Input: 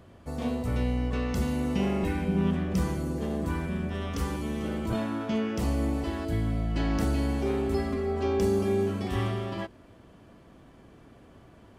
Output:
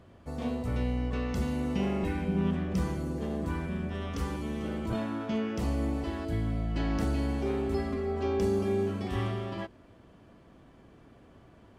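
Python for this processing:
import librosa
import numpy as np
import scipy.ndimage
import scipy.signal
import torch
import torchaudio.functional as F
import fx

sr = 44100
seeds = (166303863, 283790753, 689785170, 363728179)

y = fx.high_shelf(x, sr, hz=8400.0, db=-7.0)
y = y * librosa.db_to_amplitude(-2.5)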